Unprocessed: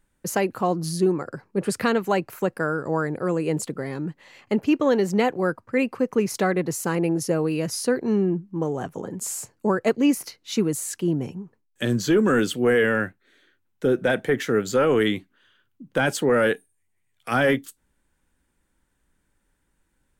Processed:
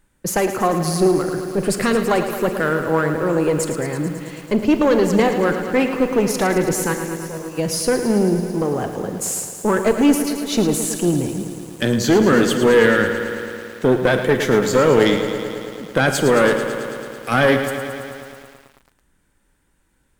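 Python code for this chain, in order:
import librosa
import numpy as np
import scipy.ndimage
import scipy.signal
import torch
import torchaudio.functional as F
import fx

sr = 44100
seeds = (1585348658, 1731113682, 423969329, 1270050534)

y = fx.diode_clip(x, sr, knee_db=-21.0)
y = fx.comb_fb(y, sr, f0_hz=81.0, decay_s=1.6, harmonics='all', damping=0.0, mix_pct=90, at=(6.93, 7.57), fade=0.02)
y = fx.rev_schroeder(y, sr, rt60_s=0.51, comb_ms=31, drr_db=12.5)
y = fx.echo_crushed(y, sr, ms=110, feedback_pct=80, bits=8, wet_db=-9.5)
y = y * 10.0 ** (7.0 / 20.0)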